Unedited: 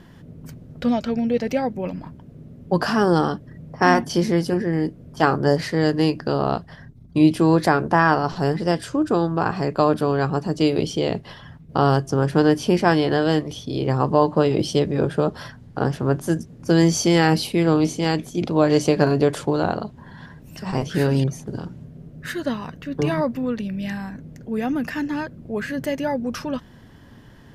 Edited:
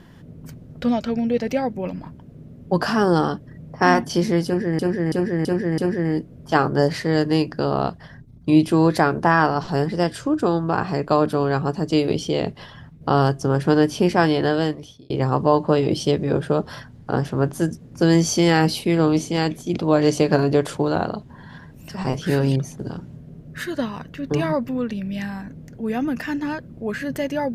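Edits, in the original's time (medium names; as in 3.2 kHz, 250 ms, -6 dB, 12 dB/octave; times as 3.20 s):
4.46–4.79 s: loop, 5 plays
13.19–13.78 s: fade out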